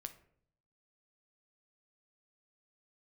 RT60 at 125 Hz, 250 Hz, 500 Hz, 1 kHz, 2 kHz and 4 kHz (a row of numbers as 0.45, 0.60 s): 1.0, 0.80, 0.70, 0.55, 0.50, 0.35 s